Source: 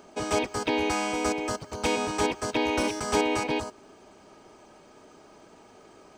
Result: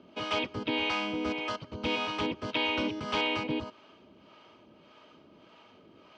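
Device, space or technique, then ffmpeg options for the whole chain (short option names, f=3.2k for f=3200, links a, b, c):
guitar amplifier with harmonic tremolo: -filter_complex "[0:a]acrossover=split=520[a][b];[a]aeval=exprs='val(0)*(1-0.7/2+0.7/2*cos(2*PI*1.7*n/s))':c=same[c];[b]aeval=exprs='val(0)*(1-0.7/2-0.7/2*cos(2*PI*1.7*n/s))':c=same[d];[c][d]amix=inputs=2:normalize=0,asoftclip=type=tanh:threshold=-20dB,highpass=84,equalizer=f=410:t=q:w=4:g=-7,equalizer=f=770:t=q:w=4:g=-9,equalizer=f=1.7k:t=q:w=4:g=-5,equalizer=f=3k:t=q:w=4:g=7,lowpass=f=4.1k:w=0.5412,lowpass=f=4.1k:w=1.3066,volume=2dB"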